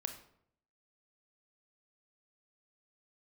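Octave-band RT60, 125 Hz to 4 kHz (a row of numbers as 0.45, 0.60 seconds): 0.85, 0.75, 0.70, 0.65, 0.55, 0.45 seconds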